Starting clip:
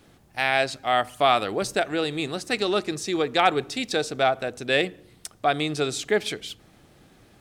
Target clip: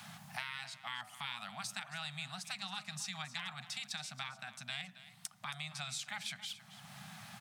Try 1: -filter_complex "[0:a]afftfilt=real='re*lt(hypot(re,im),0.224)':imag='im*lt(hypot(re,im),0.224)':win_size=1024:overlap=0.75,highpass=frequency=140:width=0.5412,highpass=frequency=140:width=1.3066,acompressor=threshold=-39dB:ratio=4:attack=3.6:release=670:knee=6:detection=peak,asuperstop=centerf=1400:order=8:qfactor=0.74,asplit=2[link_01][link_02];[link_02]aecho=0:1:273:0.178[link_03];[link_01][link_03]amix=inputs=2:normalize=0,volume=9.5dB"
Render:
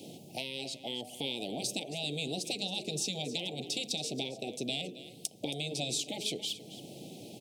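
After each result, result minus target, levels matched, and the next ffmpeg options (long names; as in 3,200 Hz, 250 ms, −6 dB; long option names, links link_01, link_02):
500 Hz band +14.0 dB; downward compressor: peak gain reduction −8 dB
-filter_complex "[0:a]afftfilt=real='re*lt(hypot(re,im),0.224)':imag='im*lt(hypot(re,im),0.224)':win_size=1024:overlap=0.75,highpass=frequency=140:width=0.5412,highpass=frequency=140:width=1.3066,acompressor=threshold=-39dB:ratio=4:attack=3.6:release=670:knee=6:detection=peak,asuperstop=centerf=380:order=8:qfactor=0.74,asplit=2[link_01][link_02];[link_02]aecho=0:1:273:0.178[link_03];[link_01][link_03]amix=inputs=2:normalize=0,volume=9.5dB"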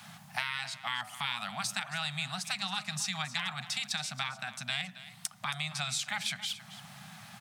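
downward compressor: peak gain reduction −8 dB
-filter_complex "[0:a]afftfilt=real='re*lt(hypot(re,im),0.224)':imag='im*lt(hypot(re,im),0.224)':win_size=1024:overlap=0.75,highpass=frequency=140:width=0.5412,highpass=frequency=140:width=1.3066,acompressor=threshold=-49.5dB:ratio=4:attack=3.6:release=670:knee=6:detection=peak,asuperstop=centerf=380:order=8:qfactor=0.74,asplit=2[link_01][link_02];[link_02]aecho=0:1:273:0.178[link_03];[link_01][link_03]amix=inputs=2:normalize=0,volume=9.5dB"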